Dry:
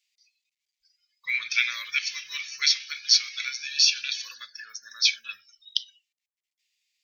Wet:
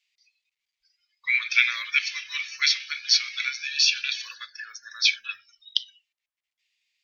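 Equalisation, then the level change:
bass and treble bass −3 dB, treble −9 dB
parametric band 280 Hz −14 dB 1.9 octaves
high-shelf EQ 11,000 Hz −9 dB
+6.0 dB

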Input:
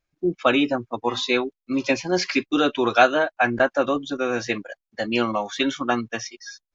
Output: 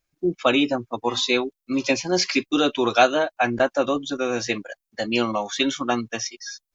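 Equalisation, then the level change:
high-shelf EQ 5,400 Hz +10 dB
dynamic equaliser 1,600 Hz, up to −5 dB, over −34 dBFS, Q 2
0.0 dB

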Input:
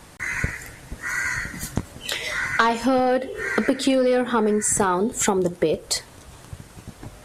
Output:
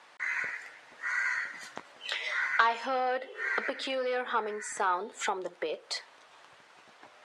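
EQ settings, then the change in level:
band-pass filter 750–3,700 Hz
−4.5 dB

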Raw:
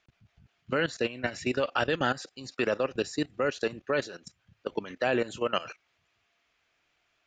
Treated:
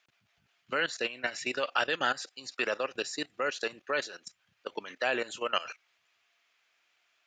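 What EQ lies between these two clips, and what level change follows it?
high-pass filter 1,100 Hz 6 dB per octave
+2.5 dB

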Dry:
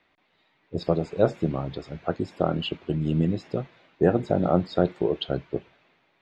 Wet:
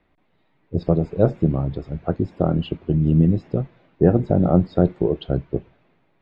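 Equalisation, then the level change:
spectral tilt −3.5 dB per octave
−1.0 dB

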